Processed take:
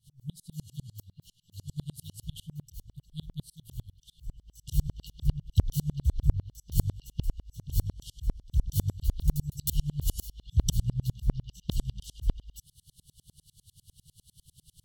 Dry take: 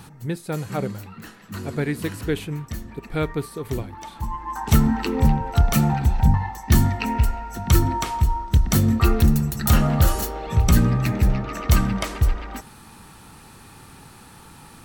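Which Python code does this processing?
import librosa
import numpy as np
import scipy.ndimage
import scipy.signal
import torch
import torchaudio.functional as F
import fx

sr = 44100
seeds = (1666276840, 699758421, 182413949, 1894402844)

y = fx.brickwall_bandstop(x, sr, low_hz=170.0, high_hz=2800.0)
y = fx.tremolo_decay(y, sr, direction='swelling', hz=10.0, depth_db=35)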